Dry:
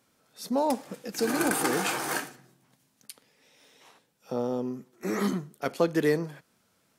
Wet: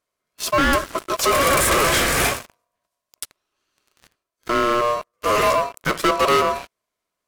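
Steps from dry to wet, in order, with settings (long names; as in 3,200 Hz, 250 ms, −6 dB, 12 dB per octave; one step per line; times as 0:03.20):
ring modulation 870 Hz
leveller curve on the samples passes 5
wrong playback speed 25 fps video run at 24 fps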